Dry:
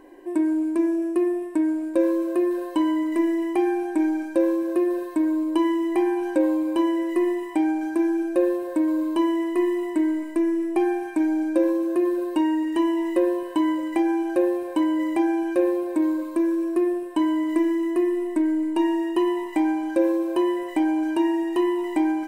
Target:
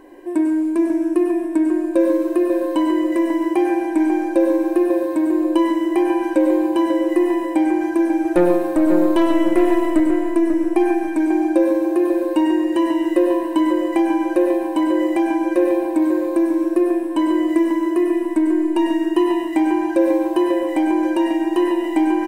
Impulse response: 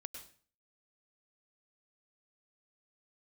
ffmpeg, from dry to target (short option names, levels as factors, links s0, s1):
-filter_complex "[0:a]asettb=1/sr,asplit=3[s0][s1][s2];[s0]atrim=end=8.254[s3];[s1]atrim=start=8.25:end=10,asetpts=PTS-STARTPTS,afade=t=in:d=0.004:c=qsin,afade=t=out:st=1.746:d=0.004:c=qsin,aeval=exprs='0.316*(cos(1*acos(clip(val(0)/0.316,-1,1)))-cos(1*PI/2))+0.0447*(cos(4*acos(clip(val(0)/0.316,-1,1)))-cos(4*PI/2))+0.0447*(cos(5*acos(clip(val(0)/0.316,-1,1)))-cos(5*PI/2))+0.0141*(cos(7*acos(clip(val(0)/0.316,-1,1)))-cos(7*PI/2))':c=same[s4];[s2]atrim=start=9.996[s5];[s3][s4]acrossfade=d=0.004:c1=hsin:c2=qsin[s6];[s6][s5]acrossfade=d=0.004:c1=qsin:c2=hsin,asplit=2[s7][s8];[s8]adelay=542,lowpass=f=1700:p=1,volume=0.501,asplit=2[s9][s10];[s10]adelay=542,lowpass=f=1700:p=1,volume=0.4,asplit=2[s11][s12];[s12]adelay=542,lowpass=f=1700:p=1,volume=0.4,asplit=2[s13][s14];[s14]adelay=542,lowpass=f=1700:p=1,volume=0.4,asplit=2[s15][s16];[s16]adelay=542,lowpass=f=1700:p=1,volume=0.4[s17];[s7][s9][s11][s13][s15][s17]amix=inputs=6:normalize=0[s18];[1:a]atrim=start_sample=2205,afade=t=out:st=0.19:d=0.01,atrim=end_sample=8820[s19];[s18][s19]afir=irnorm=-1:irlink=0,volume=2.82"